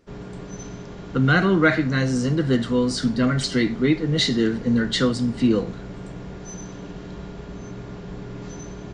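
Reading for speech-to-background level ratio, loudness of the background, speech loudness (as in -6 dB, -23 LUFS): 16.0 dB, -37.0 LUFS, -21.0 LUFS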